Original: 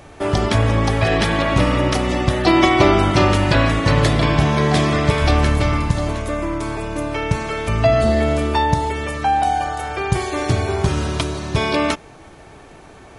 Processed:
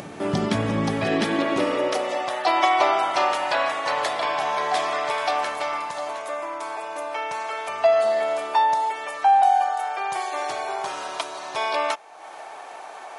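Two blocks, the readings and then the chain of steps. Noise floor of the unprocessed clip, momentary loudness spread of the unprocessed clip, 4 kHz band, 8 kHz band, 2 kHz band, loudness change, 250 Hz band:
-42 dBFS, 9 LU, -6.0 dB, -6.5 dB, -5.5 dB, -5.5 dB, -10.5 dB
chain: high-pass sweep 180 Hz -> 760 Hz, 0.89–2.37 s; upward compressor, threshold -22 dBFS; trim -6.5 dB

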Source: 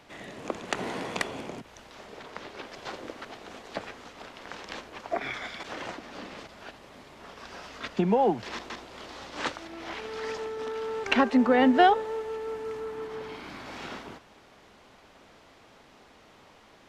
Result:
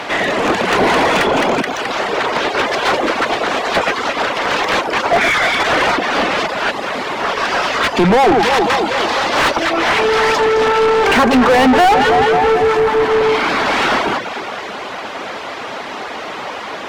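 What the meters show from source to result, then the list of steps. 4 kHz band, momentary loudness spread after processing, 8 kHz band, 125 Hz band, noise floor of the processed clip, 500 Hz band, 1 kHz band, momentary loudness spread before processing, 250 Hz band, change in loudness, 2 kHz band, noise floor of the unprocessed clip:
+20.0 dB, 15 LU, +19.5 dB, +15.0 dB, -27 dBFS, +17.0 dB, +17.0 dB, 22 LU, +11.5 dB, +15.5 dB, +20.5 dB, -56 dBFS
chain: echo whose repeats swap between lows and highs 107 ms, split 1 kHz, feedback 70%, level -8.5 dB; reverb removal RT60 0.54 s; overdrive pedal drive 37 dB, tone 2.2 kHz, clips at -7.5 dBFS; trim +4 dB

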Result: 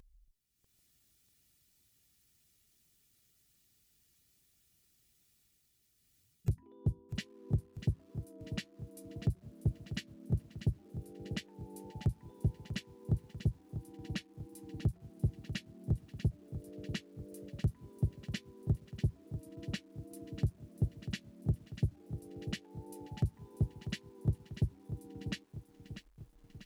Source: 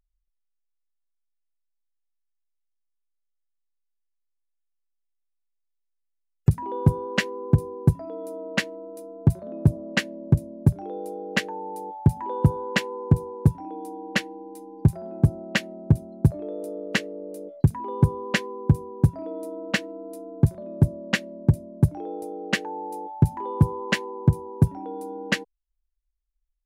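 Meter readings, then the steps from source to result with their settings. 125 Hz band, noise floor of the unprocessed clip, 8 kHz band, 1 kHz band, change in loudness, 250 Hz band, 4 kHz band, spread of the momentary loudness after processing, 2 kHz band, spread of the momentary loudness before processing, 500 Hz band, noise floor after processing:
-13.0 dB, -77 dBFS, -14.5 dB, -26.0 dB, -14.0 dB, -14.5 dB, -14.5 dB, 11 LU, -21.0 dB, 12 LU, -19.0 dB, -72 dBFS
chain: dynamic bell 3.8 kHz, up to +6 dB, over -43 dBFS, Q 0.72; harmonic-percussive split percussive +6 dB; amplifier tone stack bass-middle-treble 10-0-1; upward compressor, threshold -31 dBFS; comb of notches 530 Hz; saturation -19.5 dBFS, distortion -13 dB; wow and flutter 27 cents; bit-crushed delay 643 ms, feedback 55%, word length 10-bit, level -10.5 dB; trim -3 dB

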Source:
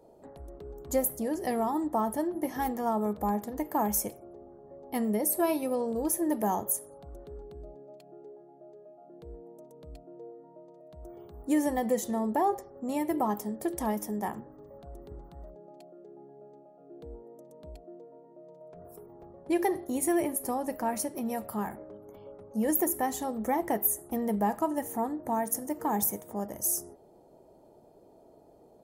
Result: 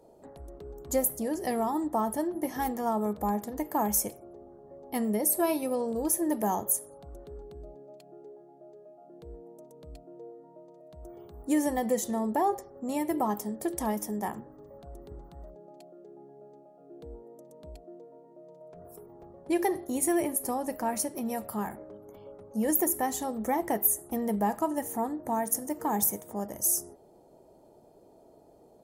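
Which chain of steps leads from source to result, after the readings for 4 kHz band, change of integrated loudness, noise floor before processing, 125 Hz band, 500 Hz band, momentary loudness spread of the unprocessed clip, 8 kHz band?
+2.0 dB, +1.0 dB, -57 dBFS, 0.0 dB, 0.0 dB, 21 LU, +3.0 dB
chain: peaking EQ 7.8 kHz +3.5 dB 1.8 oct

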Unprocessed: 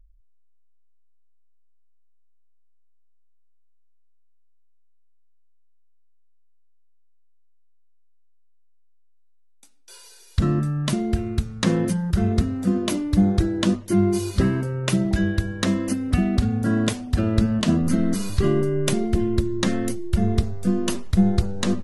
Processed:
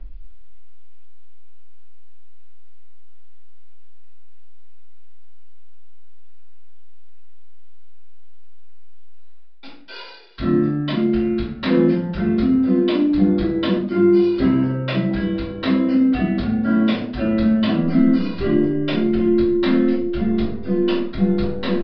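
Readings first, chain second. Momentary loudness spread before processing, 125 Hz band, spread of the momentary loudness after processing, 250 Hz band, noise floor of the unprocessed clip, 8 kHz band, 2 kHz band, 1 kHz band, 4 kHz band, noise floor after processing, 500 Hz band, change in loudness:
4 LU, -3.0 dB, 6 LU, +5.0 dB, -53 dBFS, under -30 dB, +2.5 dB, +2.0 dB, +0.5 dB, -32 dBFS, +5.5 dB, +4.0 dB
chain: three-band isolator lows -20 dB, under 190 Hz, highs -15 dB, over 4.2 kHz; reverse; upward compressor, threshold -25 dBFS; reverse; simulated room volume 46 m³, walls mixed, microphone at 2.9 m; resampled via 11.025 kHz; trim -9 dB

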